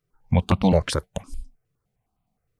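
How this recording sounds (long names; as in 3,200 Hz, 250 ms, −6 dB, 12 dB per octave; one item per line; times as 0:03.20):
notches that jump at a steady rate 9.7 Hz 220–1,700 Hz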